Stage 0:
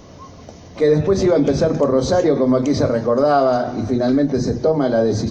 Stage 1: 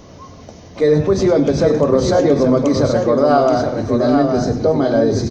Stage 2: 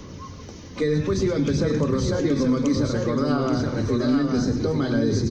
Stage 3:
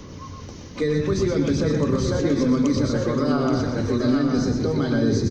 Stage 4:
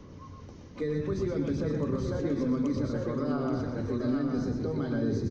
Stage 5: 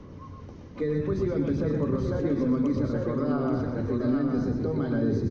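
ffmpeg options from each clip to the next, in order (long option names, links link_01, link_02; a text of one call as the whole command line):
ffmpeg -i in.wav -af "aecho=1:1:100|826:0.2|0.531,volume=1dB" out.wav
ffmpeg -i in.wav -filter_complex "[0:a]equalizer=frequency=680:width=2.9:gain=-14.5,aphaser=in_gain=1:out_gain=1:delay=4.1:decay=0.27:speed=0.58:type=sinusoidal,acrossover=split=250|1400[link_01][link_02][link_03];[link_01]acompressor=threshold=-22dB:ratio=4[link_04];[link_02]acompressor=threshold=-26dB:ratio=4[link_05];[link_03]acompressor=threshold=-35dB:ratio=4[link_06];[link_04][link_05][link_06]amix=inputs=3:normalize=0" out.wav
ffmpeg -i in.wav -filter_complex "[0:a]asplit=2[link_01][link_02];[link_02]adelay=122.4,volume=-6dB,highshelf=frequency=4000:gain=-2.76[link_03];[link_01][link_03]amix=inputs=2:normalize=0" out.wav
ffmpeg -i in.wav -af "highshelf=frequency=2700:gain=-10.5,volume=-8.5dB" out.wav
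ffmpeg -i in.wav -af "lowpass=frequency=2600:poles=1,volume=3.5dB" out.wav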